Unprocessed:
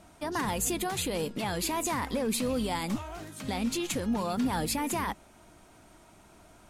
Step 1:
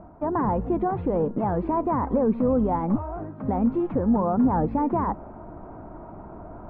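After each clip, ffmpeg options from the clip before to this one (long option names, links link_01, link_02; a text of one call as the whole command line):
ffmpeg -i in.wav -af "lowpass=frequency=1100:width=0.5412,lowpass=frequency=1100:width=1.3066,areverse,acompressor=mode=upward:threshold=-39dB:ratio=2.5,areverse,volume=8.5dB" out.wav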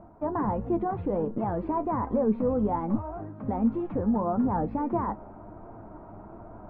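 ffmpeg -i in.wav -af "flanger=delay=8.7:depth=1.5:regen=57:speed=1.4:shape=sinusoidal" out.wav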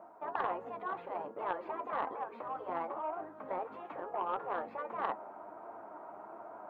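ffmpeg -i in.wav -af "afftfilt=real='re*lt(hypot(re,im),0.178)':imag='im*lt(hypot(re,im),0.178)':win_size=1024:overlap=0.75,highpass=630,aeval=exprs='0.0531*(cos(1*acos(clip(val(0)/0.0531,-1,1)))-cos(1*PI/2))+0.00668*(cos(3*acos(clip(val(0)/0.0531,-1,1)))-cos(3*PI/2))':channel_layout=same,volume=6.5dB" out.wav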